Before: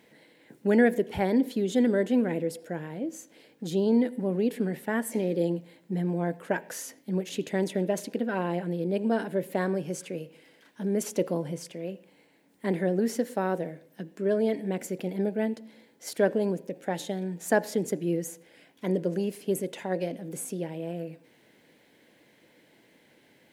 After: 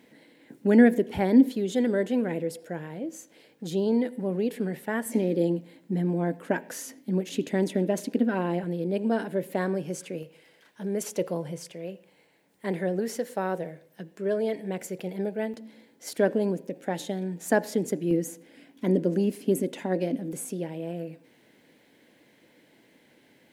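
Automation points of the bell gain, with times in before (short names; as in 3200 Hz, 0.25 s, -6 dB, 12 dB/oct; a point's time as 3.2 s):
bell 260 Hz 0.57 oct
+7.5 dB
from 1.55 s -2.5 dB
from 5.06 s +9 dB
from 8.64 s +1 dB
from 10.23 s -8 dB
from 15.54 s +4 dB
from 18.11 s +14 dB
from 20.33 s +3 dB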